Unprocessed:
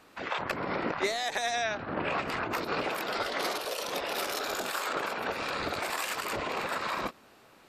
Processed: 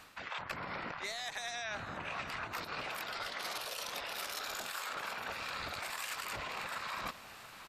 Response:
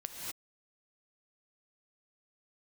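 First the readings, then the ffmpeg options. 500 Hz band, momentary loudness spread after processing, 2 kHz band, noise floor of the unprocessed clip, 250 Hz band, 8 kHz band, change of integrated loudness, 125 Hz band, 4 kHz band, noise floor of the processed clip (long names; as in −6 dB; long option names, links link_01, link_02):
−13.5 dB, 2 LU, −6.5 dB, −58 dBFS, −14.0 dB, −5.5 dB, −7.5 dB, −8.0 dB, −5.5 dB, −52 dBFS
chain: -af "equalizer=frequency=360:width_type=o:width=1.9:gain=-12.5,areverse,acompressor=threshold=-47dB:ratio=5,areverse,aecho=1:1:683|1366|2049|2732|3415:0.15|0.0838|0.0469|0.0263|0.0147,volume=7.5dB"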